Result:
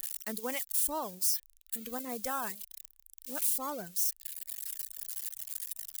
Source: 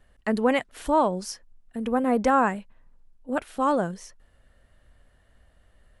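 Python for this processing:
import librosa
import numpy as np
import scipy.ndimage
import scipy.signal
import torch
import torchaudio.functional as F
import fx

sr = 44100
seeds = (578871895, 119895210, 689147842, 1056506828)

y = x + 0.5 * 10.0 ** (-22.5 / 20.0) * np.diff(np.sign(x), prepend=np.sign(x[:1]))
y = fx.dereverb_blind(y, sr, rt60_s=1.9)
y = librosa.effects.preemphasis(y, coef=0.8, zi=[0.0])
y = y * 10.0 ** (-2.0 / 20.0)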